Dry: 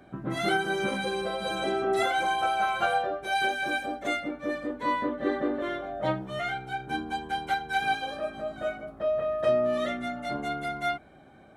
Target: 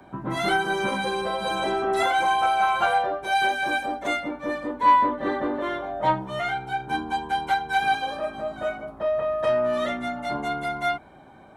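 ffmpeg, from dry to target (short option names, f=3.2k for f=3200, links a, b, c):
-filter_complex "[0:a]equalizer=f=950:w=4.5:g=12.5,acrossover=split=110|870|4200[a][b][c][d];[b]asoftclip=type=tanh:threshold=-23.5dB[e];[a][e][c][d]amix=inputs=4:normalize=0,volume=3dB"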